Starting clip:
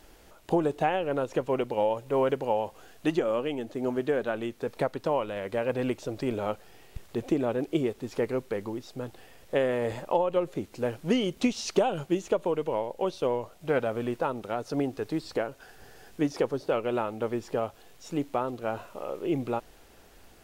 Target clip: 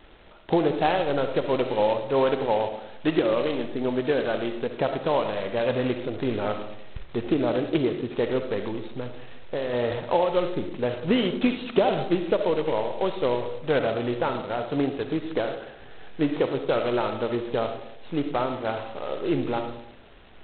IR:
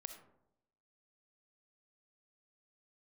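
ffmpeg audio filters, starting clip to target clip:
-filter_complex "[0:a]asplit=3[a][b][c];[a]afade=t=out:st=9:d=0.02[d];[b]acompressor=threshold=-32dB:ratio=2.5,afade=t=in:st=9:d=0.02,afade=t=out:st=9.72:d=0.02[e];[c]afade=t=in:st=9.72:d=0.02[f];[d][e][f]amix=inputs=3:normalize=0[g];[1:a]atrim=start_sample=2205[h];[g][h]afir=irnorm=-1:irlink=0,volume=8dB" -ar 8000 -c:a adpcm_g726 -b:a 16k

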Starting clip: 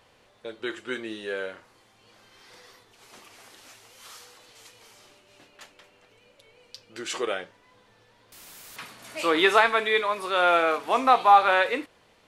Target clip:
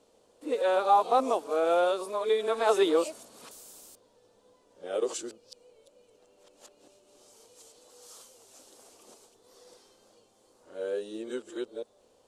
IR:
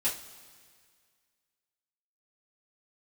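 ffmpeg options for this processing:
-af "areverse,equalizer=f=125:t=o:w=1:g=-6,equalizer=f=250:t=o:w=1:g=4,equalizer=f=500:t=o:w=1:g=9,equalizer=f=2k:t=o:w=1:g=-12,equalizer=f=8k:t=o:w=1:g=9,volume=-7.5dB"

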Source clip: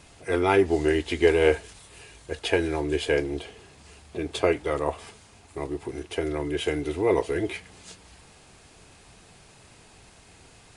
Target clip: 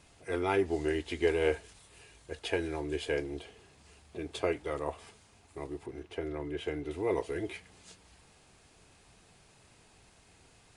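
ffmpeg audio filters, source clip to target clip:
-filter_complex "[0:a]asettb=1/sr,asplit=3[a][b][c];[a]atrim=end=5.864[d];[b]atrim=start=5.86:end=6.91,asetpts=PTS-STARTPTS,afade=t=in:d=0.004:c=qsin,afade=t=out:st=1.046:d=0.004:c=qsin,lowpass=f=2.7k:p=1[e];[c]atrim=start=6.906[f];[d][e]acrossfade=d=0.004:c1=hsin:c2=qsin[g];[g][f]acrossfade=d=0.004:c1=qsin:c2=hsin,volume=-8.5dB"

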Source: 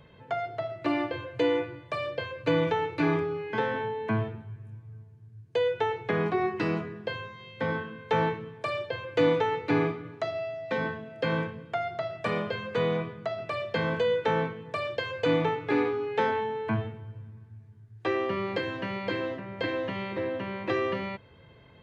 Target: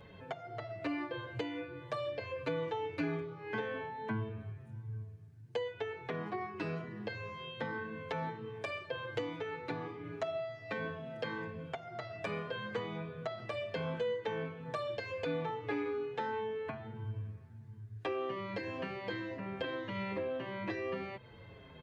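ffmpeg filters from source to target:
-filter_complex "[0:a]acompressor=threshold=-38dB:ratio=4,asplit=2[a][b];[b]adelay=6.7,afreqshift=-1.4[c];[a][c]amix=inputs=2:normalize=1,volume=4dB"

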